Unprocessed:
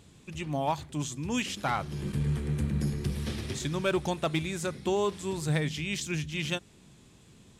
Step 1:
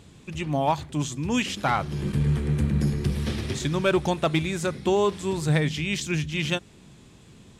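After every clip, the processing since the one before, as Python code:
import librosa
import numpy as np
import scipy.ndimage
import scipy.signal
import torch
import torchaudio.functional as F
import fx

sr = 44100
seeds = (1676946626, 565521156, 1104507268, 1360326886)

y = fx.high_shelf(x, sr, hz=5900.0, db=-5.5)
y = F.gain(torch.from_numpy(y), 6.0).numpy()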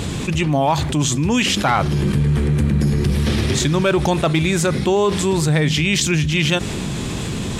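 y = fx.env_flatten(x, sr, amount_pct=70)
y = F.gain(torch.from_numpy(y), 3.5).numpy()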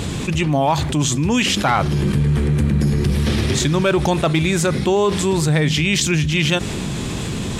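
y = x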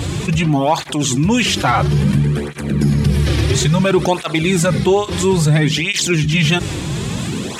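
y = fx.flanger_cancel(x, sr, hz=0.59, depth_ms=5.0)
y = F.gain(torch.from_numpy(y), 5.0).numpy()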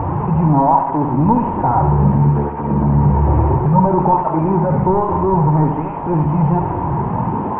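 y = fx.delta_mod(x, sr, bps=16000, step_db=-32.5)
y = fx.lowpass_res(y, sr, hz=920.0, q=9.9)
y = fx.echo_feedback(y, sr, ms=70, feedback_pct=58, wet_db=-8)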